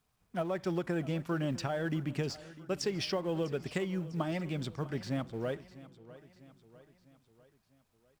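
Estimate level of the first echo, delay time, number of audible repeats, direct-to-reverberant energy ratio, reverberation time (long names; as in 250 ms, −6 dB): −18.0 dB, 650 ms, 3, no reverb audible, no reverb audible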